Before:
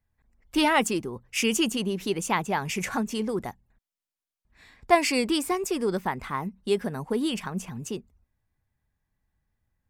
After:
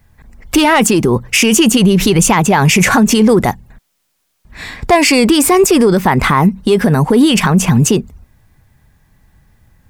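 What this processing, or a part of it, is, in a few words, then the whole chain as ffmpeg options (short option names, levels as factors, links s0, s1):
mastering chain: -filter_complex "[0:a]asplit=3[s0][s1][s2];[s0]afade=t=out:st=1.8:d=0.02[s3];[s1]asubboost=boost=4.5:cutoff=140,afade=t=in:st=1.8:d=0.02,afade=t=out:st=2.33:d=0.02[s4];[s2]afade=t=in:st=2.33:d=0.02[s5];[s3][s4][s5]amix=inputs=3:normalize=0,equalizer=f=150:t=o:w=0.77:g=3.5,acompressor=threshold=0.0316:ratio=1.5,asoftclip=type=tanh:threshold=0.133,alimiter=level_in=23.7:limit=0.891:release=50:level=0:latency=1,volume=0.841"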